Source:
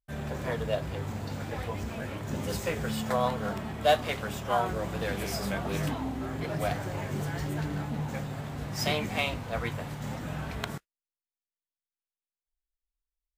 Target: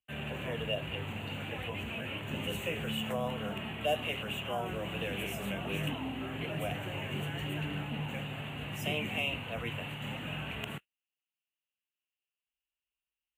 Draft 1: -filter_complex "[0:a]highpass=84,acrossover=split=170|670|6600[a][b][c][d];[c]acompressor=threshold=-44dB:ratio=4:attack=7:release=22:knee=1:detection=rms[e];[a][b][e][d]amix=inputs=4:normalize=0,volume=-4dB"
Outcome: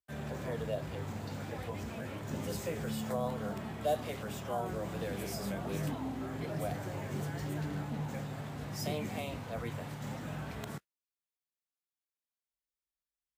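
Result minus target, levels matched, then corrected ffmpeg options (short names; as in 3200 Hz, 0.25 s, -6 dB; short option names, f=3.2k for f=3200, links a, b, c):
2000 Hz band -6.5 dB
-filter_complex "[0:a]highpass=84,acrossover=split=170|670|6600[a][b][c][d];[c]acompressor=threshold=-44dB:ratio=4:attack=7:release=22:knee=1:detection=rms,lowpass=f=2.8k:t=q:w=9.7[e];[a][b][e][d]amix=inputs=4:normalize=0,volume=-4dB"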